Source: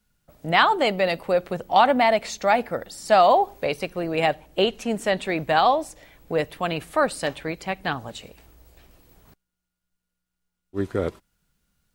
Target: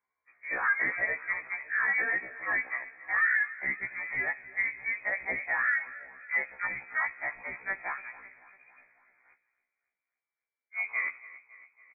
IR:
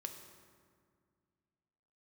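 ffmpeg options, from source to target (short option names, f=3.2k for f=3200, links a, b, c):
-filter_complex "[0:a]acrossover=split=210[a][b];[a]acrusher=bits=5:dc=4:mix=0:aa=0.000001[c];[b]alimiter=limit=-13.5dB:level=0:latency=1:release=14[d];[c][d]amix=inputs=2:normalize=0,aecho=1:1:278|556|834|1112|1390:0.133|0.0733|0.0403|0.0222|0.0122,asplit=2[e][f];[1:a]atrim=start_sample=2205,afade=t=out:st=0.42:d=0.01,atrim=end_sample=18963[g];[f][g]afir=irnorm=-1:irlink=0,volume=-10.5dB[h];[e][h]amix=inputs=2:normalize=0,lowpass=f=2.1k:t=q:w=0.5098,lowpass=f=2.1k:t=q:w=0.6013,lowpass=f=2.1k:t=q:w=0.9,lowpass=f=2.1k:t=q:w=2.563,afreqshift=-2500,afftfilt=real='re*1.73*eq(mod(b,3),0)':imag='im*1.73*eq(mod(b,3),0)':win_size=2048:overlap=0.75,volume=-5.5dB"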